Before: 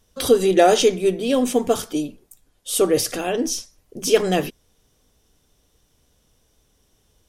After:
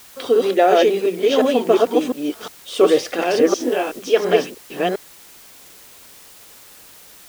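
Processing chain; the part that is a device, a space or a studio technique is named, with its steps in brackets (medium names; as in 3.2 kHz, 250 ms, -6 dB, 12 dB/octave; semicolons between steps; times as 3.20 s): chunks repeated in reverse 354 ms, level -1 dB; dictaphone (band-pass 320–3100 Hz; level rider gain up to 11 dB; wow and flutter; white noise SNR 25 dB); 3.58–3.99 s: doubling 20 ms -2 dB; trim -1 dB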